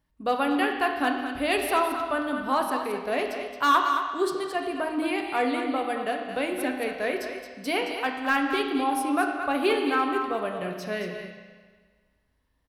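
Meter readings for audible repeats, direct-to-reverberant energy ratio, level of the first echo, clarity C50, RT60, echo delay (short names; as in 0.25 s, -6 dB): 1, 1.5 dB, -8.0 dB, 3.0 dB, 1.6 s, 0.22 s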